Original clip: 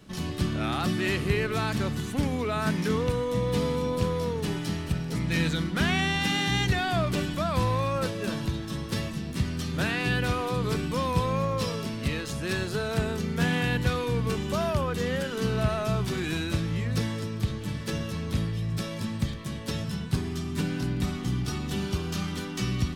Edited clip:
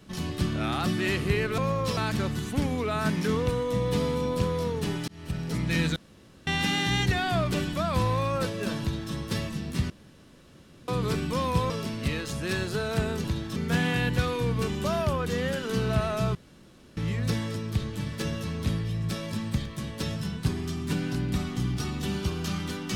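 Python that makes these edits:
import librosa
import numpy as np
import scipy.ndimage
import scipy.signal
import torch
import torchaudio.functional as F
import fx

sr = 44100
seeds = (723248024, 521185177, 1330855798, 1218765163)

y = fx.edit(x, sr, fx.fade_in_span(start_s=4.69, length_s=0.37),
    fx.room_tone_fill(start_s=5.57, length_s=0.51),
    fx.duplicate(start_s=8.42, length_s=0.32, to_s=13.24),
    fx.room_tone_fill(start_s=9.51, length_s=0.98),
    fx.move(start_s=11.31, length_s=0.39, to_s=1.58),
    fx.room_tone_fill(start_s=16.03, length_s=0.62), tone=tone)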